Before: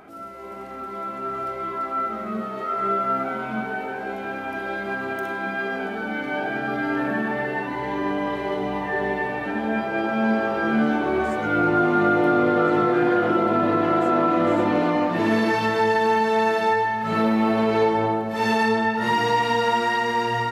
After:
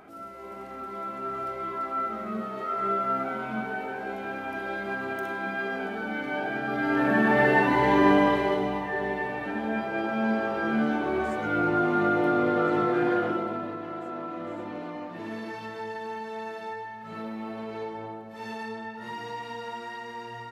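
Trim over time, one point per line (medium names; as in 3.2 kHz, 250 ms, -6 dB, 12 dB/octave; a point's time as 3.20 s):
6.67 s -4 dB
7.46 s +6 dB
8.15 s +6 dB
8.88 s -5 dB
13.17 s -5 dB
13.79 s -16 dB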